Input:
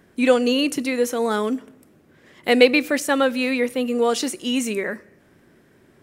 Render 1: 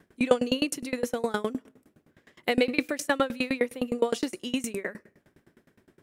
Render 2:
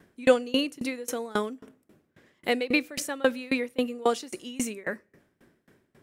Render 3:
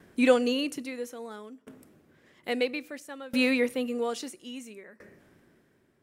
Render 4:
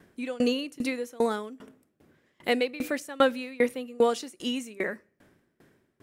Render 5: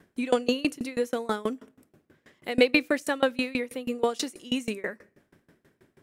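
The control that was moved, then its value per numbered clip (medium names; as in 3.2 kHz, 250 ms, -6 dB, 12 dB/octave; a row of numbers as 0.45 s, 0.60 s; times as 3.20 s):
sawtooth tremolo in dB, rate: 9.7 Hz, 3.7 Hz, 0.6 Hz, 2.5 Hz, 6.2 Hz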